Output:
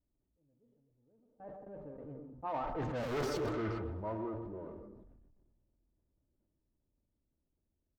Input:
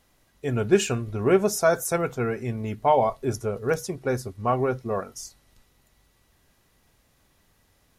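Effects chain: jump at every zero crossing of -21.5 dBFS; Doppler pass-by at 3.13 s, 51 m/s, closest 2.7 m; treble shelf 5.5 kHz -9 dB; comb 3.3 ms, depth 32%; repeats whose band climbs or falls 121 ms, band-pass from 380 Hz, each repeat 0.7 oct, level -9 dB; gate with hold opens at -41 dBFS; on a send at -10 dB: reverberation RT60 0.40 s, pre-delay 107 ms; on the sum: one-sided clip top -33.5 dBFS, bottom -18.5 dBFS; level-controlled noise filter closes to 350 Hz, open at -30.5 dBFS; reverse; compression 12:1, threshold -38 dBFS, peak gain reduction 14.5 dB; reverse; peaking EQ 10 kHz -8 dB 0.77 oct; decay stretcher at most 32 dB/s; trim +5 dB

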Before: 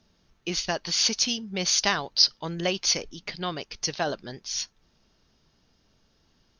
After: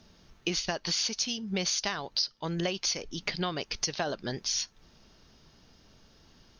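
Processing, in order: compression 8:1, threshold -35 dBFS, peak gain reduction 20 dB; trim +7 dB

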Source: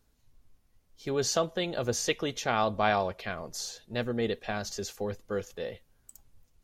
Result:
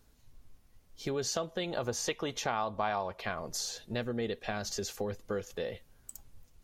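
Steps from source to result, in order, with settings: 1.71–3.40 s: peaking EQ 960 Hz +7.5 dB 0.85 oct; compression 3:1, threshold -39 dBFS, peak gain reduction 15.5 dB; trim +5 dB

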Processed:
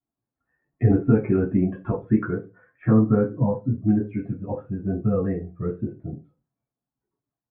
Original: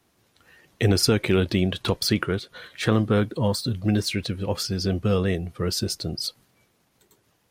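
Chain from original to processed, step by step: expander on every frequency bin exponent 1.5; Gaussian low-pass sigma 6.9 samples; reverberation RT60 0.25 s, pre-delay 3 ms, DRR -5.5 dB

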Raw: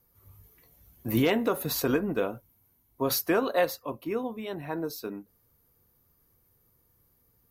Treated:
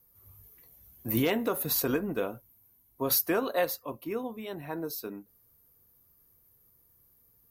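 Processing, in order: treble shelf 9.4 kHz +10.5 dB; trim -3 dB

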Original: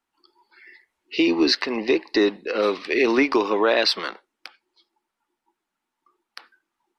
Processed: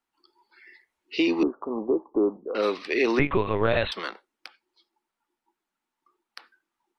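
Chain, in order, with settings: 1.43–2.55 s: steep low-pass 1.3 kHz 96 dB/octave; 3.19–3.92 s: LPC vocoder at 8 kHz pitch kept; trim -3.5 dB

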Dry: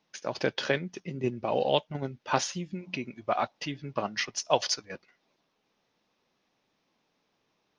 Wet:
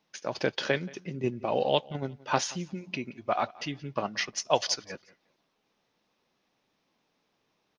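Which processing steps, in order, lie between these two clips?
feedback delay 177 ms, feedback 21%, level -22 dB

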